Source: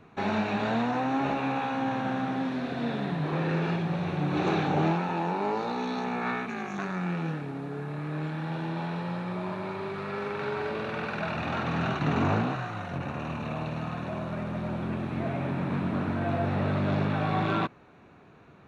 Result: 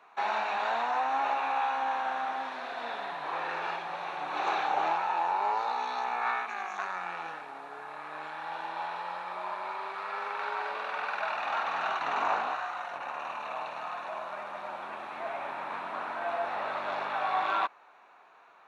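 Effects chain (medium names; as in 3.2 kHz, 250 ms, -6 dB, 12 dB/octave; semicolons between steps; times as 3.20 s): resonant high-pass 870 Hz, resonance Q 1.9; trim -1.5 dB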